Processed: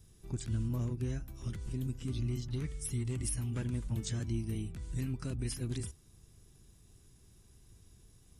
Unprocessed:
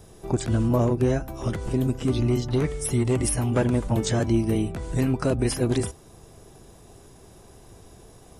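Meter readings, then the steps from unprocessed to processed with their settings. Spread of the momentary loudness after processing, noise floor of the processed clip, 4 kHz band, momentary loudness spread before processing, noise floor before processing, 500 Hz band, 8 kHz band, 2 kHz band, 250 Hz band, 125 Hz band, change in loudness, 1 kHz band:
5 LU, −62 dBFS, −11.5 dB, 6 LU, −50 dBFS, −21.5 dB, −10.5 dB, −15.5 dB, −15.5 dB, −10.0 dB, −13.0 dB, −23.0 dB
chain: guitar amp tone stack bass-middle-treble 6-0-2
level +4 dB

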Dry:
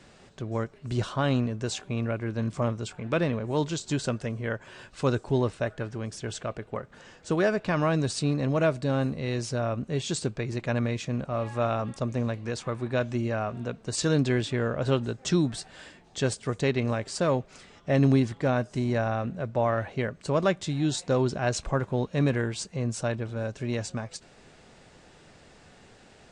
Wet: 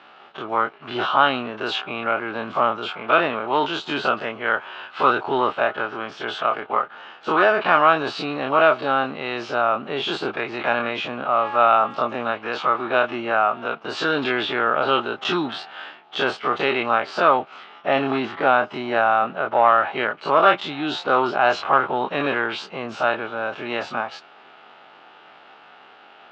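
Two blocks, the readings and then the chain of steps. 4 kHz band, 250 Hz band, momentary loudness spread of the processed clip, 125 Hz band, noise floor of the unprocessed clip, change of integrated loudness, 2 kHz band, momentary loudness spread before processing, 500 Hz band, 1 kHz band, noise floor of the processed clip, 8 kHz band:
+9.5 dB, −1.0 dB, 11 LU, −12.5 dB, −55 dBFS, +7.0 dB, +13.0 dB, 10 LU, +6.0 dB, +16.0 dB, −48 dBFS, below −10 dB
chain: every bin's largest magnitude spread in time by 60 ms
leveller curve on the samples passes 1
loudspeaker in its box 460–3,400 Hz, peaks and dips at 510 Hz −6 dB, 820 Hz +7 dB, 1,300 Hz +10 dB, 1,900 Hz −4 dB, 3,000 Hz +5 dB
level +3.5 dB

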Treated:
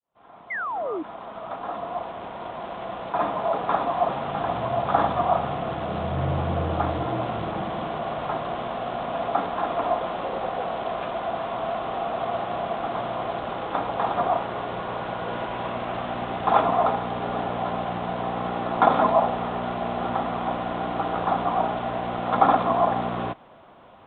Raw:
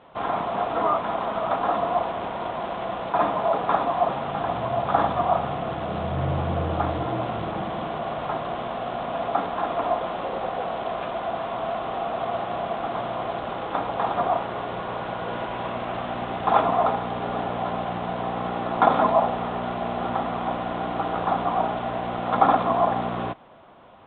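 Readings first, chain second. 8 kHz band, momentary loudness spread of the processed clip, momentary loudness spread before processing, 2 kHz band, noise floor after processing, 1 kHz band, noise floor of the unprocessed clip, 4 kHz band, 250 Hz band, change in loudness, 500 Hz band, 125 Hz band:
can't be measured, 10 LU, 9 LU, 0.0 dB, −45 dBFS, −0.5 dB, −32 dBFS, −0.5 dB, −0.5 dB, −0.5 dB, −0.5 dB, 0.0 dB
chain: fade in at the beginning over 4.42 s
sound drawn into the spectrogram fall, 0:00.50–0:01.03, 290–2,200 Hz −29 dBFS

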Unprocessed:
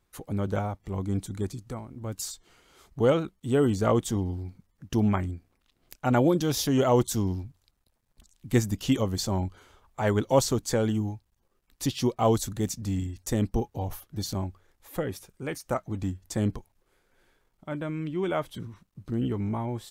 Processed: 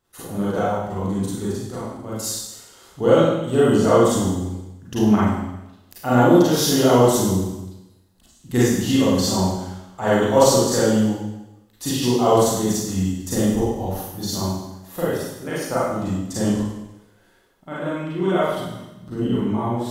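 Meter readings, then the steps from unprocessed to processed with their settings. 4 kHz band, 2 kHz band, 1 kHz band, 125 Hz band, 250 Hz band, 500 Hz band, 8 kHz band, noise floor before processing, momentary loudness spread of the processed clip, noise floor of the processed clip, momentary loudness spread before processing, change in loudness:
+9.5 dB, +8.5 dB, +9.5 dB, +4.5 dB, +8.5 dB, +9.0 dB, +9.5 dB, −73 dBFS, 16 LU, −55 dBFS, 14 LU, +8.0 dB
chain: low-shelf EQ 87 Hz −10.5 dB
notch filter 2,300 Hz, Q 7.8
four-comb reverb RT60 0.95 s, combs from 33 ms, DRR −9 dB

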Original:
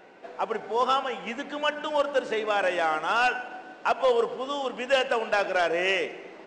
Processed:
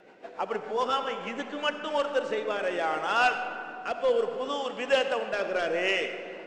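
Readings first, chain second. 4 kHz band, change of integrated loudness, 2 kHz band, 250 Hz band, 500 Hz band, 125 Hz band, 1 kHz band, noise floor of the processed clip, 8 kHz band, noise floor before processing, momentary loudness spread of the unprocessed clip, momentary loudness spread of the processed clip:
−1.5 dB, −2.0 dB, −2.0 dB, −1.0 dB, −2.0 dB, can't be measured, −3.0 dB, −46 dBFS, −2.0 dB, −48 dBFS, 10 LU, 9 LU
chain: rotating-speaker cabinet horn 7 Hz, later 0.7 Hz, at 0:01.16
comb and all-pass reverb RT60 2.9 s, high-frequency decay 0.4×, pre-delay 25 ms, DRR 8.5 dB

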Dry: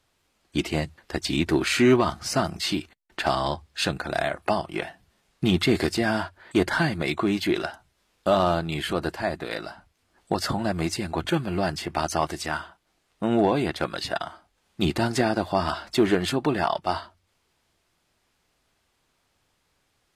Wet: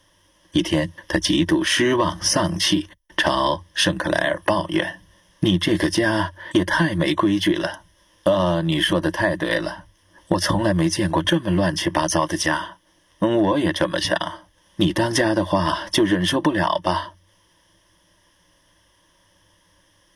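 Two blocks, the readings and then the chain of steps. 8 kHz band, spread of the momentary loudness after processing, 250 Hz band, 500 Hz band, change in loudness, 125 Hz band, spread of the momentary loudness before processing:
+8.5 dB, 6 LU, +5.0 dB, +3.5 dB, +5.0 dB, +5.0 dB, 10 LU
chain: EQ curve with evenly spaced ripples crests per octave 1.2, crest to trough 15 dB
downward compressor 6 to 1, threshold −24 dBFS, peak gain reduction 12 dB
level +8.5 dB

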